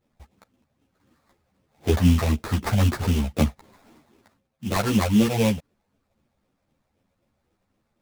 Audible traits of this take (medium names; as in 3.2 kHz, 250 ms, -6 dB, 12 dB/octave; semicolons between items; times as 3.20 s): phasing stages 8, 3.9 Hz, lowest notch 300–1800 Hz; aliases and images of a low sample rate 3 kHz, jitter 20%; a shimmering, thickened sound